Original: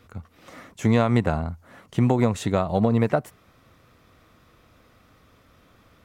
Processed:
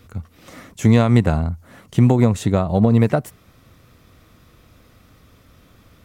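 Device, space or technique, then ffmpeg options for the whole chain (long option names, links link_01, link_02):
smiley-face EQ: -filter_complex "[0:a]lowshelf=frequency=190:gain=4,equalizer=frequency=1000:width_type=o:width=2.5:gain=-4,highshelf=frequency=6600:gain=4.5,asplit=3[link_01][link_02][link_03];[link_01]afade=type=out:start_time=1.47:duration=0.02[link_04];[link_02]adynamicequalizer=threshold=0.00794:dfrequency=1800:dqfactor=0.7:tfrequency=1800:tqfactor=0.7:attack=5:release=100:ratio=0.375:range=3:mode=cutabove:tftype=highshelf,afade=type=in:start_time=1.47:duration=0.02,afade=type=out:start_time=2.87:duration=0.02[link_05];[link_03]afade=type=in:start_time=2.87:duration=0.02[link_06];[link_04][link_05][link_06]amix=inputs=3:normalize=0,volume=5dB"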